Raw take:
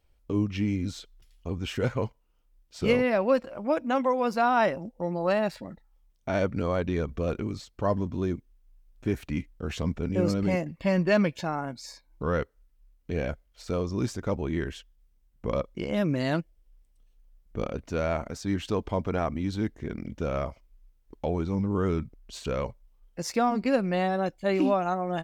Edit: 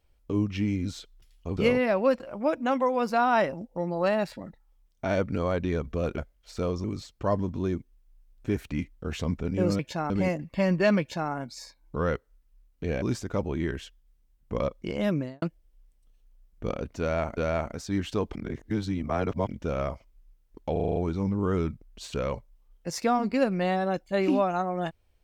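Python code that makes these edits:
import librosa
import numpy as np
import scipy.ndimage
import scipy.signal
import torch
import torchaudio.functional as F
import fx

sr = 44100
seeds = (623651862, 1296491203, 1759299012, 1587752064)

y = fx.studio_fade_out(x, sr, start_s=16.02, length_s=0.33)
y = fx.edit(y, sr, fx.cut(start_s=1.57, length_s=1.24),
    fx.duplicate(start_s=11.27, length_s=0.31, to_s=10.37),
    fx.move(start_s=13.29, length_s=0.66, to_s=7.42),
    fx.repeat(start_s=17.93, length_s=0.37, count=2),
    fx.reverse_span(start_s=18.91, length_s=1.12),
    fx.stutter(start_s=21.28, slice_s=0.04, count=7), tone=tone)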